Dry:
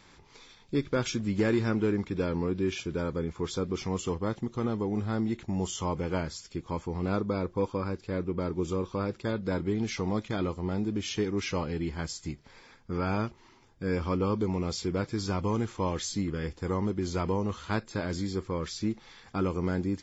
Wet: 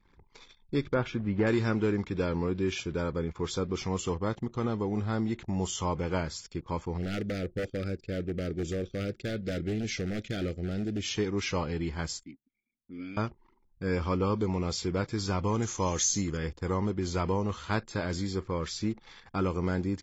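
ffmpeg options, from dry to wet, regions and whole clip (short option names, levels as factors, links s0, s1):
-filter_complex "[0:a]asettb=1/sr,asplit=3[s0][s1][s2];[s0]atrim=end=0.944[s3];[s1]atrim=start=0.94:end=1.47,asetpts=PTS-STARTPTS,afade=t=in:d=0.004:c=qsin,afade=t=out:st=0.526:d=0.004:c=qsin,lowpass=2100,equalizer=f=770:t=o:w=0.41:g=3.5[s4];[s2]atrim=start=1.466[s5];[s3][s4]acrossfade=d=0.004:c1=hsin:c2=qsin[s6];[s6][s5]acrossfade=d=0.004:c1=qsin:c2=hsin,asettb=1/sr,asplit=3[s7][s8][s9];[s7]atrim=end=6.974[s10];[s8]atrim=start=6.97:end=11.05,asetpts=PTS-STARTPTS,afade=t=in:d=0.004:c=qsin,afade=t=out:st=4.076:d=0.004:c=qsin,aeval=exprs='0.0562*(abs(mod(val(0)/0.0562+3,4)-2)-1)':c=same,asuperstop=centerf=990:order=4:qfactor=1.1[s11];[s9]atrim=start=11.046[s12];[s10][s11]acrossfade=d=0.004:c1=hsin:c2=qsin[s13];[s13][s12]acrossfade=d=0.004:c1=qsin:c2=hsin,asettb=1/sr,asplit=3[s14][s15][s16];[s14]atrim=end=12.234[s17];[s15]atrim=start=12.23:end=13.17,asetpts=PTS-STARTPTS,afade=t=in:d=0.004:c=qsin,afade=t=out:st=0.936:d=0.004:c=qsin,asplit=3[s18][s19][s20];[s18]bandpass=f=270:t=q:w=8,volume=1[s21];[s19]bandpass=f=2290:t=q:w=8,volume=0.501[s22];[s20]bandpass=f=3010:t=q:w=8,volume=0.355[s23];[s21][s22][s23]amix=inputs=3:normalize=0,bass=f=250:g=2,treble=f=4000:g=10[s24];[s16]atrim=start=13.166[s25];[s17][s24]acrossfade=d=0.004:c1=hsin:c2=qsin[s26];[s26][s25]acrossfade=d=0.004:c1=qsin:c2=hsin,asettb=1/sr,asplit=3[s27][s28][s29];[s27]atrim=end=15.624[s30];[s28]atrim=start=15.62:end=16.37,asetpts=PTS-STARTPTS,afade=t=in:d=0.004:c=qsin,afade=t=out:st=0.746:d=0.004:c=qsin,lowpass=f=6500:t=q:w=11,acrossover=split=2900[s31][s32];[s32]acompressor=threshold=0.0562:ratio=4:attack=1:release=60[s33];[s31][s33]amix=inputs=2:normalize=0[s34];[s29]atrim=start=16.366[s35];[s30][s34]acrossfade=d=0.004:c1=hsin:c2=qsin[s36];[s36][s35]acrossfade=d=0.004:c1=qsin:c2=hsin,anlmdn=0.00158,equalizer=f=270:t=o:w=1.5:g=-3,volume=1.19"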